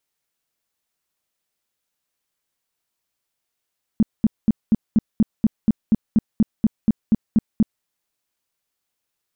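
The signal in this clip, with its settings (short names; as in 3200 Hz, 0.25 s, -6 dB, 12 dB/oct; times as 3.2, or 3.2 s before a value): tone bursts 219 Hz, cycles 6, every 0.24 s, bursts 16, -10.5 dBFS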